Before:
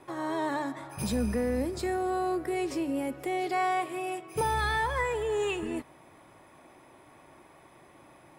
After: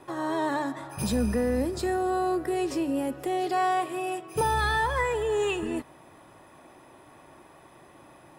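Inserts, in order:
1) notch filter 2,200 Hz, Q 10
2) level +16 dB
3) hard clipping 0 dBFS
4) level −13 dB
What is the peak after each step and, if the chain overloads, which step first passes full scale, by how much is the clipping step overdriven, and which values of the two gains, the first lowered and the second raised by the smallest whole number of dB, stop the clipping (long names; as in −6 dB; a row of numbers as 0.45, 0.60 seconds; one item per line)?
−18.0, −2.0, −2.0, −15.0 dBFS
no step passes full scale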